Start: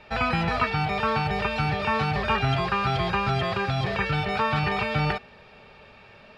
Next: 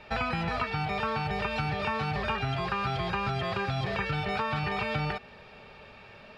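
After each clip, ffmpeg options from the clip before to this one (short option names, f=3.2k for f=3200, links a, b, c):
-af "acompressor=threshold=-27dB:ratio=6"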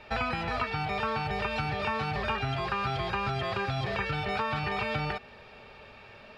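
-af "equalizer=f=170:t=o:w=0.28:g=-7.5"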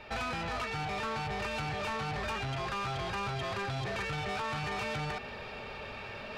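-af "areverse,acompressor=mode=upward:threshold=-34dB:ratio=2.5,areverse,asoftclip=type=tanh:threshold=-33dB,volume=1dB"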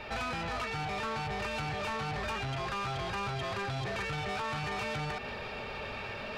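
-af "alimiter=level_in=14dB:limit=-24dB:level=0:latency=1:release=148,volume=-14dB,volume=6dB"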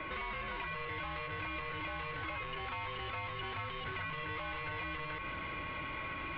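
-filter_complex "[0:a]highpass=f=180:t=q:w=0.5412,highpass=f=180:t=q:w=1.307,lowpass=f=3.4k:t=q:w=0.5176,lowpass=f=3.4k:t=q:w=0.7071,lowpass=f=3.4k:t=q:w=1.932,afreqshift=-290,acrossover=split=85|1600[a][b][c];[a]acompressor=threshold=-51dB:ratio=4[d];[b]acompressor=threshold=-50dB:ratio=4[e];[c]acompressor=threshold=-44dB:ratio=4[f];[d][e][f]amix=inputs=3:normalize=0,aeval=exprs='val(0)+0.00447*sin(2*PI*1100*n/s)':c=same,volume=3dB"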